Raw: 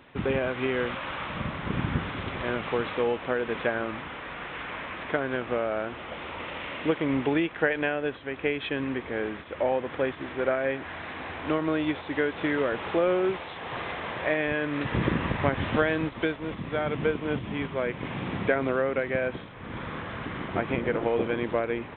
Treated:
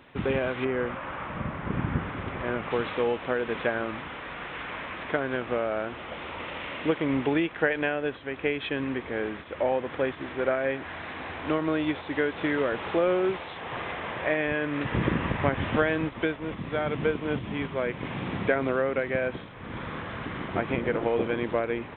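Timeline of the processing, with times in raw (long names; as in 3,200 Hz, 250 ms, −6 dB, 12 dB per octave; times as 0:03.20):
0:00.64–0:02.69: low-pass filter 1,700 Hz → 2,400 Hz
0:13.61–0:16.60: low-pass filter 3,700 Hz 24 dB per octave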